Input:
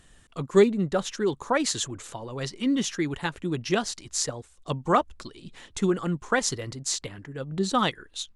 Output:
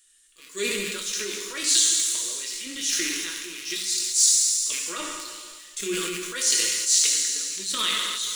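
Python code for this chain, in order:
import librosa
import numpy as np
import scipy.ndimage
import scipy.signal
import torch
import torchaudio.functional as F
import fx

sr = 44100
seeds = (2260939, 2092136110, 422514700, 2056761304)

p1 = fx.rattle_buzz(x, sr, strikes_db=-33.0, level_db=-32.0)
p2 = fx.spec_repair(p1, sr, seeds[0], start_s=3.77, length_s=0.64, low_hz=210.0, high_hz=3400.0, source='after')
p3 = scipy.signal.lfilter([1.0, -0.97], [1.0], p2)
p4 = fx.hpss(p3, sr, part='percussive', gain_db=-8)
p5 = fx.peak_eq(p4, sr, hz=130.0, db=-9.0, octaves=1.3)
p6 = p5 + 0.37 * np.pad(p5, (int(6.2 * sr / 1000.0), 0))[:len(p5)]
p7 = fx.leveller(p6, sr, passes=2)
p8 = fx.transient(p7, sr, attack_db=-7, sustain_db=8)
p9 = fx.fixed_phaser(p8, sr, hz=320.0, stages=4)
p10 = p9 + fx.echo_wet_highpass(p9, sr, ms=70, feedback_pct=85, hz=3400.0, wet_db=-12, dry=0)
p11 = fx.rev_fdn(p10, sr, rt60_s=1.7, lf_ratio=0.75, hf_ratio=0.7, size_ms=49.0, drr_db=0.0)
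p12 = fx.sustainer(p11, sr, db_per_s=23.0)
y = F.gain(torch.from_numpy(p12), 9.0).numpy()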